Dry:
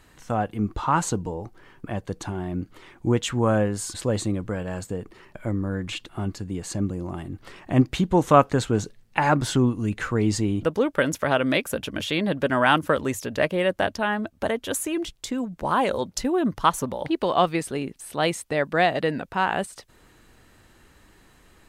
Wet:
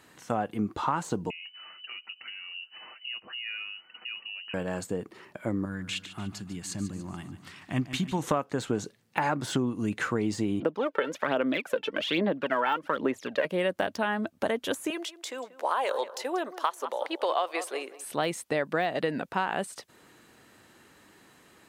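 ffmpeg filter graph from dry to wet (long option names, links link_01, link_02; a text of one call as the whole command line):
ffmpeg -i in.wav -filter_complex "[0:a]asettb=1/sr,asplit=3[link_01][link_02][link_03];[link_01]atrim=end=1.304[link_04];[link_02]atrim=start=1.3:end=4.54,asetpts=PTS-STARTPTS,afade=type=in:duration=0.004:curve=qsin,afade=type=out:start_time=3.236:duration=0.004:curve=qsin,acompressor=threshold=-44dB:ratio=2.5:attack=3.2:release=140:knee=1:detection=peak,aecho=1:1:7.2:0.49,atrim=end_sample=142884,lowpass=frequency=2600:width_type=q:width=0.5098,lowpass=frequency=2600:width_type=q:width=0.6013,lowpass=frequency=2600:width_type=q:width=0.9,lowpass=frequency=2600:width_type=q:width=2.563,afreqshift=-3000[link_05];[link_03]atrim=start=4.536[link_06];[link_04][link_05]acrossfade=duration=0.004:curve1=hsin:curve2=qsin[link_07];[link_07][link_06]acrossfade=duration=0.004:curve1=qsin:curve2=hsin,asettb=1/sr,asplit=3[link_08][link_09][link_10];[link_08]atrim=end=5.654[link_11];[link_09]atrim=start=5.65:end=8.23,asetpts=PTS-STARTPTS,afade=type=in:duration=0.004:curve=qsin,afade=type=out:start_time=2.576:duration=0.004:curve=qsin,equalizer=frequency=480:width_type=o:width=1.7:gain=-14.5,aecho=1:1:146|292|438|584|730:0.224|0.107|0.0516|0.0248|0.0119,atrim=end_sample=113778[link_12];[link_10]atrim=start=8.226[link_13];[link_11][link_12]acrossfade=duration=0.004:curve1=hsin:curve2=qsin[link_14];[link_14][link_13]acrossfade=duration=0.004:curve1=qsin:curve2=hsin,asettb=1/sr,asplit=3[link_15][link_16][link_17];[link_15]atrim=end=10.604[link_18];[link_16]atrim=start=10.6:end=13.45,asetpts=PTS-STARTPTS,afade=type=in:duration=0.004:curve=qsin,afade=type=out:start_time=2.846:duration=0.004:curve=qsin,acrossover=split=200 4200:gain=0.126 1 0.1[link_19][link_20][link_21];[link_19][link_20][link_21]amix=inputs=3:normalize=0,aphaser=in_gain=1:out_gain=1:delay=2.3:decay=0.65:speed=1.2:type=sinusoidal[link_22];[link_17]atrim=start=13.446[link_23];[link_18][link_22]acrossfade=duration=0.004:curve1=hsin:curve2=qsin[link_24];[link_24][link_23]acrossfade=duration=0.004:curve1=qsin:curve2=hsin,asettb=1/sr,asplit=3[link_25][link_26][link_27];[link_25]atrim=end=14.904[link_28];[link_26]atrim=start=14.9:end=18.04,asetpts=PTS-STARTPTS,afade=type=in:duration=0.004:curve=qsin,afade=type=out:start_time=3.136:duration=0.004:curve=qsin,highpass=frequency=450:width=0.5412,highpass=frequency=450:width=1.3066,asplit=2[link_29][link_30];[link_30]adelay=185,lowpass=frequency=2400:poles=1,volume=-16.5dB,asplit=2[link_31][link_32];[link_32]adelay=185,lowpass=frequency=2400:poles=1,volume=0.31,asplit=2[link_33][link_34];[link_34]adelay=185,lowpass=frequency=2400:poles=1,volume=0.31[link_35];[link_29][link_31][link_33][link_35]amix=inputs=4:normalize=0,atrim=end_sample=138474[link_36];[link_27]atrim=start=18.036[link_37];[link_28][link_36]acrossfade=duration=0.004:curve1=hsin:curve2=qsin[link_38];[link_38][link_37]acrossfade=duration=0.004:curve1=qsin:curve2=hsin,deesser=0.65,highpass=160,acompressor=threshold=-23dB:ratio=12" out.wav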